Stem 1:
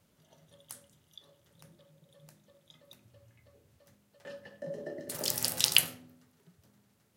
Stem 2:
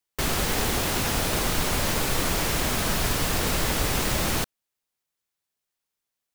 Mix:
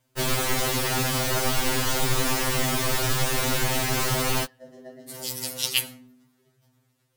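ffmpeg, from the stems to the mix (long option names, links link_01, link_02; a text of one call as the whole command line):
ffmpeg -i stem1.wav -i stem2.wav -filter_complex "[0:a]volume=2.5dB[link_01];[1:a]volume=3dB[link_02];[link_01][link_02]amix=inputs=2:normalize=0,afftfilt=real='re*2.45*eq(mod(b,6),0)':imag='im*2.45*eq(mod(b,6),0)':win_size=2048:overlap=0.75" out.wav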